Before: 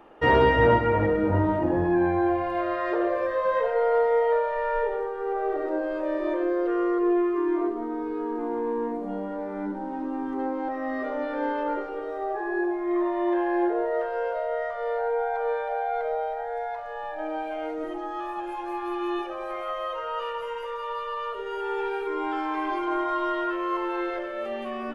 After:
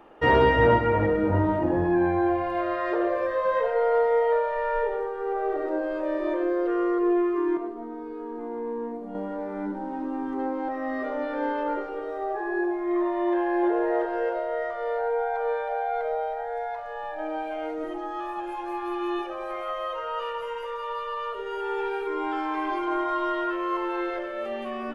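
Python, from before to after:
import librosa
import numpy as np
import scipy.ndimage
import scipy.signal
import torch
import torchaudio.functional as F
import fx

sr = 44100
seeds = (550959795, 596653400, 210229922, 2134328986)

y = fx.comb_fb(x, sr, f0_hz=230.0, decay_s=0.2, harmonics='all', damping=0.0, mix_pct=60, at=(7.57, 9.15))
y = fx.echo_throw(y, sr, start_s=13.29, length_s=0.66, ms=340, feedback_pct=30, wet_db=-5.5)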